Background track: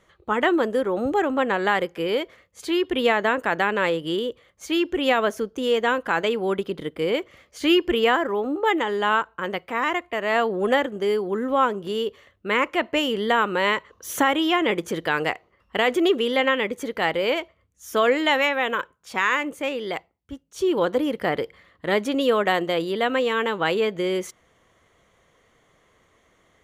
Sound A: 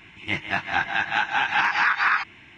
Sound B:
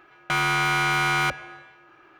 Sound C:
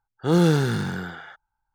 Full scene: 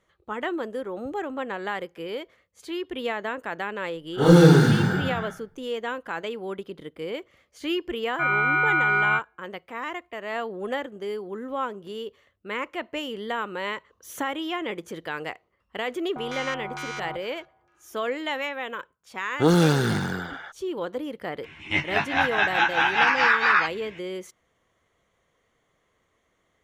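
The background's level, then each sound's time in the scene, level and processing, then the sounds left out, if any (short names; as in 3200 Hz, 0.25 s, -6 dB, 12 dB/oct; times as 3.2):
background track -9 dB
3.93 add C -5.5 dB + shoebox room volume 53 m³, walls mixed, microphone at 2 m
7.89 add B -1.5 dB + spectral expander 2.5:1
15.86 add B -12.5 dB + LFO low-pass square 2.2 Hz 730–6300 Hz
19.16 add C -1.5 dB + harmonic-percussive split percussive +7 dB
21.43 add A + doubler 13 ms -3.5 dB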